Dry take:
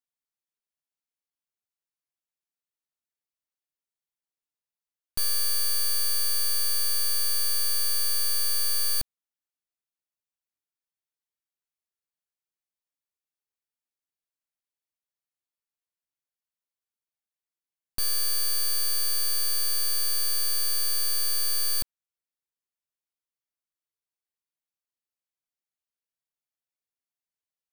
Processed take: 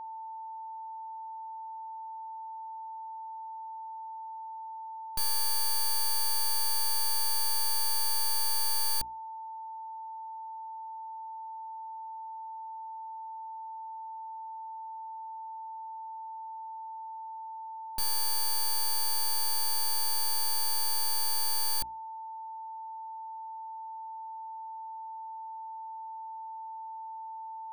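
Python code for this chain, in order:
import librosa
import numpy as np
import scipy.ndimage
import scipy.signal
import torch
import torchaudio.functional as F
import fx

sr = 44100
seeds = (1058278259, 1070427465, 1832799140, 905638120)

y = x + 10.0 ** (-35.0 / 20.0) * np.sin(2.0 * np.pi * 890.0 * np.arange(len(x)) / sr)
y = fx.hum_notches(y, sr, base_hz=60, count=7)
y = y * 10.0 ** (-3.5 / 20.0)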